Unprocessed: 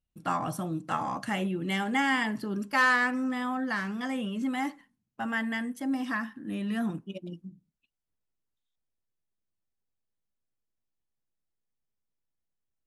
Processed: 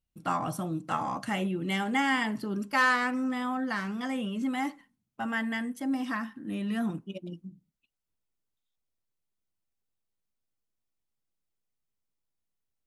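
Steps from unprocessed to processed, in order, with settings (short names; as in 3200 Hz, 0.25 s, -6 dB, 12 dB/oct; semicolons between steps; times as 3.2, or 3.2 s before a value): notch 1700 Hz, Q 16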